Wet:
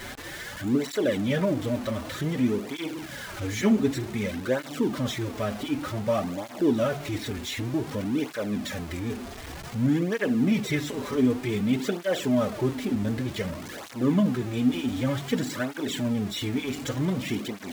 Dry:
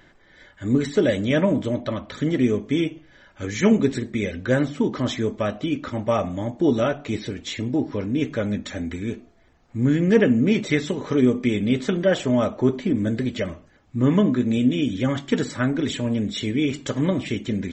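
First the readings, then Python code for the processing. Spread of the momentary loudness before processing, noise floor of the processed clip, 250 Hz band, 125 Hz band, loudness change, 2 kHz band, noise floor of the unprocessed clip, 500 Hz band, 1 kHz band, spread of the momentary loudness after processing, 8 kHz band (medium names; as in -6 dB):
10 LU, -40 dBFS, -4.5 dB, -4.5 dB, -5.0 dB, -4.0 dB, -55 dBFS, -5.5 dB, -3.0 dB, 9 LU, +0.5 dB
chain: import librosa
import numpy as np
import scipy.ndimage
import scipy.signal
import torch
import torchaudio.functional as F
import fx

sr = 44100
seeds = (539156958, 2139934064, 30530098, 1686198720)

y = x + 0.5 * 10.0 ** (-25.5 / 20.0) * np.sign(x)
y = fx.flanger_cancel(y, sr, hz=0.54, depth_ms=6.7)
y = F.gain(torch.from_numpy(y), -4.0).numpy()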